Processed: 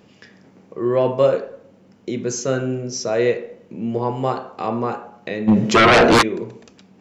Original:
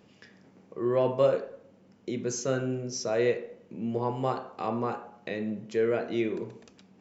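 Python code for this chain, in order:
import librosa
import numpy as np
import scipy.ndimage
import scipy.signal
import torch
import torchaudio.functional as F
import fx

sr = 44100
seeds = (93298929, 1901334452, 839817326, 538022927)

y = fx.fold_sine(x, sr, drive_db=fx.line((5.47, 11.0), (6.21, 17.0)), ceiling_db=-15.5, at=(5.47, 6.21), fade=0.02)
y = y * librosa.db_to_amplitude(7.5)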